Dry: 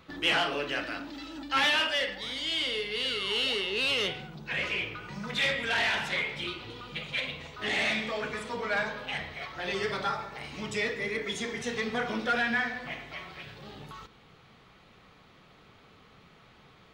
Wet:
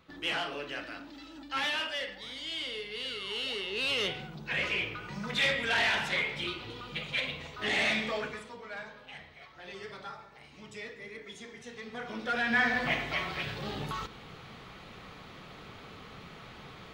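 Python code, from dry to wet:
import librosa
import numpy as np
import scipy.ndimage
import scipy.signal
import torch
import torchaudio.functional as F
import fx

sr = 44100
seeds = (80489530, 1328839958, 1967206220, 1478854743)

y = fx.gain(x, sr, db=fx.line((3.43, -6.5), (4.23, 0.0), (8.16, 0.0), (8.59, -12.5), (11.8, -12.5), (12.44, -2.0), (12.78, 8.5)))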